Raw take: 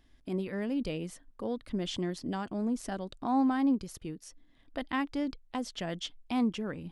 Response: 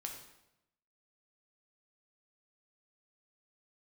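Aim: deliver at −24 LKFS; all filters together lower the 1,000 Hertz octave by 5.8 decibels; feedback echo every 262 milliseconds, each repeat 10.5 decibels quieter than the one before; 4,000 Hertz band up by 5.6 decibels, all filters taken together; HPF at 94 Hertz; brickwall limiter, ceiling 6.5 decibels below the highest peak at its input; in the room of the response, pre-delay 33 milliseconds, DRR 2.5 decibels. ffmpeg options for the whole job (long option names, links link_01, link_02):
-filter_complex "[0:a]highpass=94,equalizer=frequency=1000:width_type=o:gain=-8.5,equalizer=frequency=4000:width_type=o:gain=8,alimiter=level_in=2dB:limit=-24dB:level=0:latency=1,volume=-2dB,aecho=1:1:262|524|786:0.299|0.0896|0.0269,asplit=2[link_01][link_02];[1:a]atrim=start_sample=2205,adelay=33[link_03];[link_02][link_03]afir=irnorm=-1:irlink=0,volume=-0.5dB[link_04];[link_01][link_04]amix=inputs=2:normalize=0,volume=10dB"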